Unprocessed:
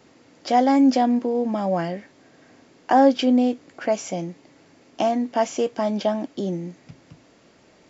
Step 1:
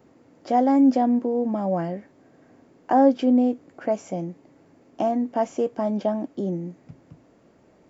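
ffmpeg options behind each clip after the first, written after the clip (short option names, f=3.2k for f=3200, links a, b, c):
-af "equalizer=f=4.2k:w=0.43:g=-14"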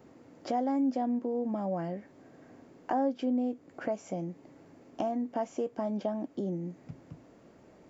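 -af "acompressor=threshold=-36dB:ratio=2"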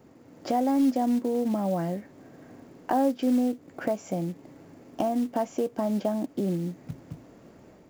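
-af "bass=f=250:g=3,treble=f=4k:g=1,acrusher=bits=6:mode=log:mix=0:aa=0.000001,dynaudnorm=f=220:g=3:m=4.5dB"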